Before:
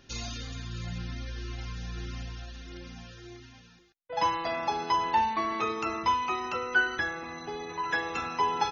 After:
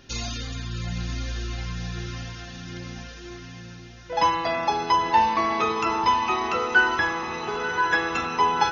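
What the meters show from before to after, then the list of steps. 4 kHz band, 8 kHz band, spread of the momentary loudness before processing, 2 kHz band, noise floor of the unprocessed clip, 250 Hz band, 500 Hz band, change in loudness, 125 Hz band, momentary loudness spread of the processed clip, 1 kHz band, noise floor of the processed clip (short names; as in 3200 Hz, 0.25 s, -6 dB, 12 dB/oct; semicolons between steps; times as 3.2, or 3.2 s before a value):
+6.5 dB, n/a, 18 LU, +6.5 dB, -57 dBFS, +6.5 dB, +6.5 dB, +6.5 dB, +6.5 dB, 18 LU, +6.5 dB, -42 dBFS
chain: diffused feedback echo 0.994 s, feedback 53%, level -8 dB; gain +6 dB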